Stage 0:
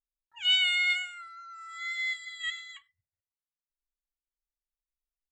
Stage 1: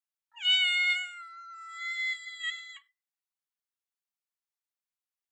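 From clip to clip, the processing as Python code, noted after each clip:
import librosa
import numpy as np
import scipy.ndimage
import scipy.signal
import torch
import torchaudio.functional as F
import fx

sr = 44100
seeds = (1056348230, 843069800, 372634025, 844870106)

y = scipy.signal.sosfilt(scipy.signal.ellip(4, 1.0, 40, 720.0, 'highpass', fs=sr, output='sos'), x)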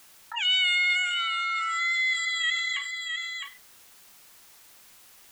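y = x + 10.0 ** (-19.0 / 20.0) * np.pad(x, (int(659 * sr / 1000.0), 0))[:len(x)]
y = fx.env_flatten(y, sr, amount_pct=70)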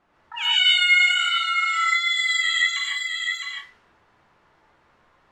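y = fx.rev_gated(x, sr, seeds[0], gate_ms=180, shape='rising', drr_db=-4.0)
y = fx.env_lowpass(y, sr, base_hz=1000.0, full_db=-23.0)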